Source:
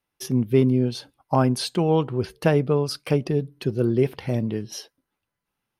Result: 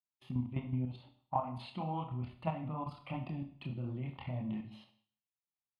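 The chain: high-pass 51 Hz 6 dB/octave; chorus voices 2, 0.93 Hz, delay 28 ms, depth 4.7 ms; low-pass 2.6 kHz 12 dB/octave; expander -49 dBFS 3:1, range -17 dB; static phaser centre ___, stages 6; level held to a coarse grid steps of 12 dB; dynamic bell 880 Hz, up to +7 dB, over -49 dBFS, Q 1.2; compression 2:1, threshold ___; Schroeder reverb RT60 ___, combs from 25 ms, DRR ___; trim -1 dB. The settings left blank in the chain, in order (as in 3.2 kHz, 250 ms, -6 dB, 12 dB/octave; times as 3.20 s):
1.6 kHz, -36 dBFS, 0.54 s, 7.5 dB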